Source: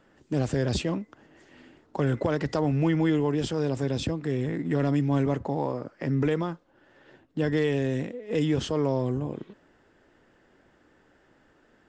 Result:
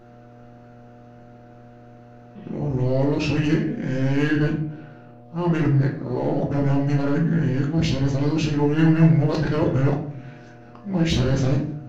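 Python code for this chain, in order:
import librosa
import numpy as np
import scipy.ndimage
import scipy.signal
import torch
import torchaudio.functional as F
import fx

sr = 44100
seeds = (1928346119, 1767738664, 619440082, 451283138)

p1 = np.flip(x).copy()
p2 = np.clip(p1, -10.0 ** (-26.0 / 20.0), 10.0 ** (-26.0 / 20.0))
p3 = p1 + F.gain(torch.from_numpy(p2), -5.0).numpy()
p4 = fx.formant_shift(p3, sr, semitones=-3)
p5 = fx.dmg_buzz(p4, sr, base_hz=120.0, harmonics=6, level_db=-51.0, tilt_db=-1, odd_only=False)
y = fx.room_shoebox(p5, sr, seeds[0], volume_m3=72.0, walls='mixed', distance_m=0.76)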